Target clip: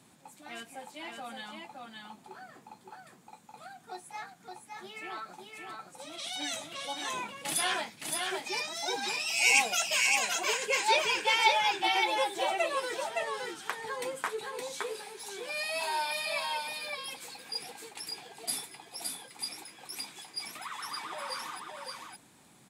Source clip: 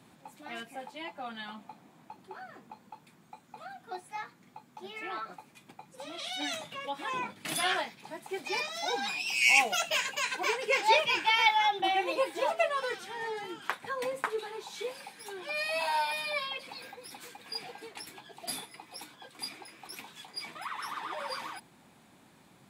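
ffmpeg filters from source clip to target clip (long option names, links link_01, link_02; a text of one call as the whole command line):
ffmpeg -i in.wav -filter_complex "[0:a]equalizer=frequency=8500:width=0.69:gain=9,asplit=2[link_01][link_02];[link_02]aecho=0:1:566:0.668[link_03];[link_01][link_03]amix=inputs=2:normalize=0,volume=-3dB" out.wav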